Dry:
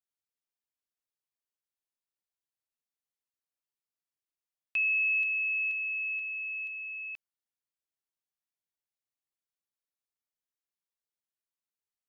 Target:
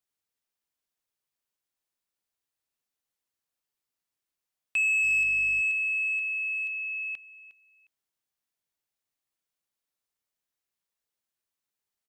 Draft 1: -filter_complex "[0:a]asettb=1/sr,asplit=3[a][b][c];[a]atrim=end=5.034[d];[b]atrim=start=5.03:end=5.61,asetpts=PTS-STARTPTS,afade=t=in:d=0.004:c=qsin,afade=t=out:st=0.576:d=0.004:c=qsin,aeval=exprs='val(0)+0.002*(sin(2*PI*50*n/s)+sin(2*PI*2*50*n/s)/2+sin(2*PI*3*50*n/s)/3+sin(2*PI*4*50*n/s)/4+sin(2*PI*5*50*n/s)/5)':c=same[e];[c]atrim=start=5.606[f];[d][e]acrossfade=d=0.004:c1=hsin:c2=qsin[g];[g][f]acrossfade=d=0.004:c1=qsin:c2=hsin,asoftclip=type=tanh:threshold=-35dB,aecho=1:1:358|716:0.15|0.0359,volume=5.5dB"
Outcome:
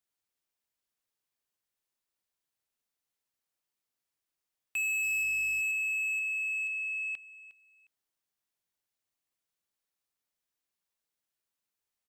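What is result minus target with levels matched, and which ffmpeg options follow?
soft clip: distortion +10 dB
-filter_complex "[0:a]asettb=1/sr,asplit=3[a][b][c];[a]atrim=end=5.034[d];[b]atrim=start=5.03:end=5.61,asetpts=PTS-STARTPTS,afade=t=in:d=0.004:c=qsin,afade=t=out:st=0.576:d=0.004:c=qsin,aeval=exprs='val(0)+0.002*(sin(2*PI*50*n/s)+sin(2*PI*2*50*n/s)/2+sin(2*PI*3*50*n/s)/3+sin(2*PI*4*50*n/s)/4+sin(2*PI*5*50*n/s)/5)':c=same[e];[c]atrim=start=5.606[f];[d][e]acrossfade=d=0.004:c1=hsin:c2=qsin[g];[g][f]acrossfade=d=0.004:c1=qsin:c2=hsin,asoftclip=type=tanh:threshold=-26dB,aecho=1:1:358|716:0.15|0.0359,volume=5.5dB"

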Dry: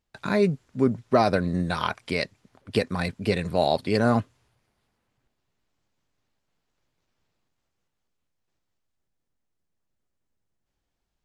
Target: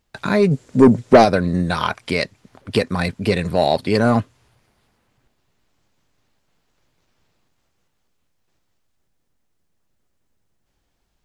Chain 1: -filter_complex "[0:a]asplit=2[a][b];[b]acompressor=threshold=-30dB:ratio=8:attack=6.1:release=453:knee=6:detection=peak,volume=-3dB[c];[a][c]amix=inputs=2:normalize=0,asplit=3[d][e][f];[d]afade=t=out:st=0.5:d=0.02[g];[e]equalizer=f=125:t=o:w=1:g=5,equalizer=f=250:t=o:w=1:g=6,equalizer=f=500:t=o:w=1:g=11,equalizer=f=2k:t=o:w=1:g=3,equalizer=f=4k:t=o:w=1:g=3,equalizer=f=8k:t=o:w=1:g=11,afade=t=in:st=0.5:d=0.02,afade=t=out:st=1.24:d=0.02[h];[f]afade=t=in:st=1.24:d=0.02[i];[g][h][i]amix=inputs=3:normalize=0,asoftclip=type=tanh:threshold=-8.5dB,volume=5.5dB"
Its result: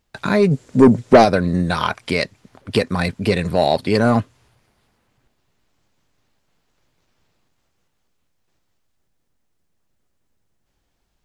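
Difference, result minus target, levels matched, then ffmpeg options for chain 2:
compressor: peak gain reduction -5.5 dB
-filter_complex "[0:a]asplit=2[a][b];[b]acompressor=threshold=-36.5dB:ratio=8:attack=6.1:release=453:knee=6:detection=peak,volume=-3dB[c];[a][c]amix=inputs=2:normalize=0,asplit=3[d][e][f];[d]afade=t=out:st=0.5:d=0.02[g];[e]equalizer=f=125:t=o:w=1:g=5,equalizer=f=250:t=o:w=1:g=6,equalizer=f=500:t=o:w=1:g=11,equalizer=f=2k:t=o:w=1:g=3,equalizer=f=4k:t=o:w=1:g=3,equalizer=f=8k:t=o:w=1:g=11,afade=t=in:st=0.5:d=0.02,afade=t=out:st=1.24:d=0.02[h];[f]afade=t=in:st=1.24:d=0.02[i];[g][h][i]amix=inputs=3:normalize=0,asoftclip=type=tanh:threshold=-8.5dB,volume=5.5dB"

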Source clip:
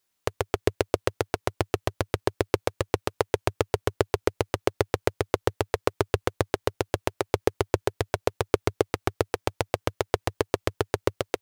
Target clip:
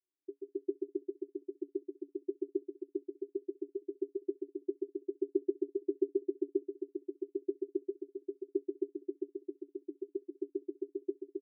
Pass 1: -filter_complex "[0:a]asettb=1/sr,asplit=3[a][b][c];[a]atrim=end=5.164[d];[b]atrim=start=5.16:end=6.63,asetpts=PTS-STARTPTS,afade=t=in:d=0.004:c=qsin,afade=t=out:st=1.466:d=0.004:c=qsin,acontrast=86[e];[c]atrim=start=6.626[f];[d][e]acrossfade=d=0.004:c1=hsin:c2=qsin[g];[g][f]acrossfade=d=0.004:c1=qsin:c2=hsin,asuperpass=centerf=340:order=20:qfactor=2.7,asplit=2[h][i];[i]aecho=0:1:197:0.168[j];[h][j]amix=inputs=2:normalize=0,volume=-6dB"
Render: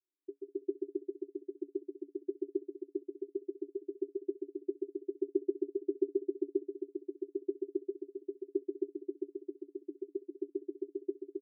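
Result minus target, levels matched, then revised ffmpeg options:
echo-to-direct +9 dB
-filter_complex "[0:a]asettb=1/sr,asplit=3[a][b][c];[a]atrim=end=5.164[d];[b]atrim=start=5.16:end=6.63,asetpts=PTS-STARTPTS,afade=t=in:d=0.004:c=qsin,afade=t=out:st=1.466:d=0.004:c=qsin,acontrast=86[e];[c]atrim=start=6.626[f];[d][e]acrossfade=d=0.004:c1=hsin:c2=qsin[g];[g][f]acrossfade=d=0.004:c1=qsin:c2=hsin,asuperpass=centerf=340:order=20:qfactor=2.7,asplit=2[h][i];[i]aecho=0:1:197:0.0596[j];[h][j]amix=inputs=2:normalize=0,volume=-6dB"

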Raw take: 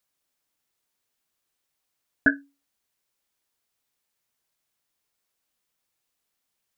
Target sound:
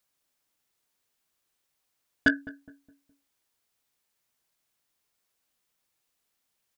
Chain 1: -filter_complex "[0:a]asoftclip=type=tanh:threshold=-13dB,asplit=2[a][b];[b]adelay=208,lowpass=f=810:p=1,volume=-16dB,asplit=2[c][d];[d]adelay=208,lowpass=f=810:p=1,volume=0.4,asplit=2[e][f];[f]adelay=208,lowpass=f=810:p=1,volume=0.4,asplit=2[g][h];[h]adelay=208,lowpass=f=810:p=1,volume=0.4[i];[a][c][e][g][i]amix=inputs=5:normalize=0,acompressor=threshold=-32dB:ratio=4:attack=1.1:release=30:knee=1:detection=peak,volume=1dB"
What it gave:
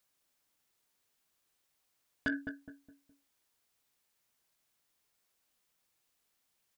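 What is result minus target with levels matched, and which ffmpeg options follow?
compressor: peak gain reduction +13.5 dB
-filter_complex "[0:a]asoftclip=type=tanh:threshold=-13dB,asplit=2[a][b];[b]adelay=208,lowpass=f=810:p=1,volume=-16dB,asplit=2[c][d];[d]adelay=208,lowpass=f=810:p=1,volume=0.4,asplit=2[e][f];[f]adelay=208,lowpass=f=810:p=1,volume=0.4,asplit=2[g][h];[h]adelay=208,lowpass=f=810:p=1,volume=0.4[i];[a][c][e][g][i]amix=inputs=5:normalize=0,volume=1dB"

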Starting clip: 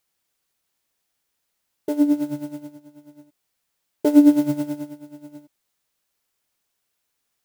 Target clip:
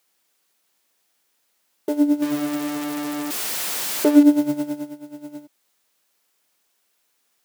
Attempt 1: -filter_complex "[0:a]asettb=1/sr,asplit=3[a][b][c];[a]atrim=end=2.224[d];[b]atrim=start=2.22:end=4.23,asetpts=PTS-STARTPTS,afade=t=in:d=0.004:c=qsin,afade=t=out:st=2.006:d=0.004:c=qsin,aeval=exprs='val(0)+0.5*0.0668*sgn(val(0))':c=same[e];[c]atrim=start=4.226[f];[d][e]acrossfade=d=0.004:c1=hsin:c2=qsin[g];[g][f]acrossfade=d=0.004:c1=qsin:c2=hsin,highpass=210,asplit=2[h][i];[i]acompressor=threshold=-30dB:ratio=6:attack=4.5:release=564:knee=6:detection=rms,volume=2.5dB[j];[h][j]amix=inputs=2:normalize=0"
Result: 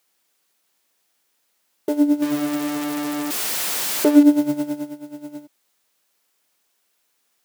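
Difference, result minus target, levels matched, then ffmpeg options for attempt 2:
compressor: peak gain reduction -6 dB
-filter_complex "[0:a]asettb=1/sr,asplit=3[a][b][c];[a]atrim=end=2.224[d];[b]atrim=start=2.22:end=4.23,asetpts=PTS-STARTPTS,afade=t=in:d=0.004:c=qsin,afade=t=out:st=2.006:d=0.004:c=qsin,aeval=exprs='val(0)+0.5*0.0668*sgn(val(0))':c=same[e];[c]atrim=start=4.226[f];[d][e]acrossfade=d=0.004:c1=hsin:c2=qsin[g];[g][f]acrossfade=d=0.004:c1=qsin:c2=hsin,highpass=210,asplit=2[h][i];[i]acompressor=threshold=-37dB:ratio=6:attack=4.5:release=564:knee=6:detection=rms,volume=2.5dB[j];[h][j]amix=inputs=2:normalize=0"

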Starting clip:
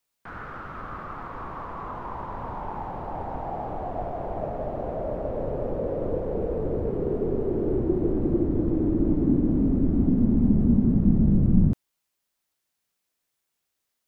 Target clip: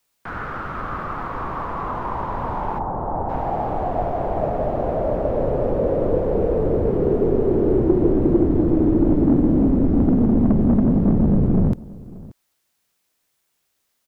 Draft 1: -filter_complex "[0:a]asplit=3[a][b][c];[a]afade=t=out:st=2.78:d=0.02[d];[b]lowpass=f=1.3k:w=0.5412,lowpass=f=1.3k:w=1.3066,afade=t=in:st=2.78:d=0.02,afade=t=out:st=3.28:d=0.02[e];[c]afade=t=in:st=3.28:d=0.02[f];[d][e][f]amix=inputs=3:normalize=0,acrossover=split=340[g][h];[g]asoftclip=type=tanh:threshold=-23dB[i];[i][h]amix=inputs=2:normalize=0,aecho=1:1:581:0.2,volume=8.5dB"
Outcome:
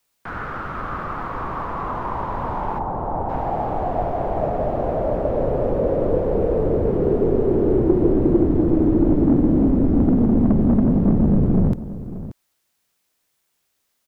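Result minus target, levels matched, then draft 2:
echo-to-direct +6.5 dB
-filter_complex "[0:a]asplit=3[a][b][c];[a]afade=t=out:st=2.78:d=0.02[d];[b]lowpass=f=1.3k:w=0.5412,lowpass=f=1.3k:w=1.3066,afade=t=in:st=2.78:d=0.02,afade=t=out:st=3.28:d=0.02[e];[c]afade=t=in:st=3.28:d=0.02[f];[d][e][f]amix=inputs=3:normalize=0,acrossover=split=340[g][h];[g]asoftclip=type=tanh:threshold=-23dB[i];[i][h]amix=inputs=2:normalize=0,aecho=1:1:581:0.0944,volume=8.5dB"

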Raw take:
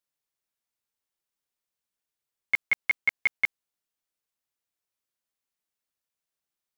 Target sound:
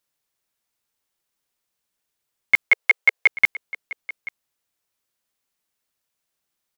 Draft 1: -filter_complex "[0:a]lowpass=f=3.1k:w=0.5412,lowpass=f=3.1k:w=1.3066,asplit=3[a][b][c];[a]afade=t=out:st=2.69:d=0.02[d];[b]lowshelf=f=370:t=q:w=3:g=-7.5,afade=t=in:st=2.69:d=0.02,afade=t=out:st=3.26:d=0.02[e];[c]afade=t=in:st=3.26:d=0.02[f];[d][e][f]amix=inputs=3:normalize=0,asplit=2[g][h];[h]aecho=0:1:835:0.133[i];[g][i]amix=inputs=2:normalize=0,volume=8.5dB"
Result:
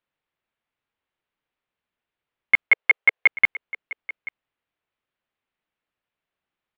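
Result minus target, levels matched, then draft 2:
4000 Hz band -3.0 dB
-filter_complex "[0:a]asplit=3[a][b][c];[a]afade=t=out:st=2.69:d=0.02[d];[b]lowshelf=f=370:t=q:w=3:g=-7.5,afade=t=in:st=2.69:d=0.02,afade=t=out:st=3.26:d=0.02[e];[c]afade=t=in:st=3.26:d=0.02[f];[d][e][f]amix=inputs=3:normalize=0,asplit=2[g][h];[h]aecho=0:1:835:0.133[i];[g][i]amix=inputs=2:normalize=0,volume=8.5dB"

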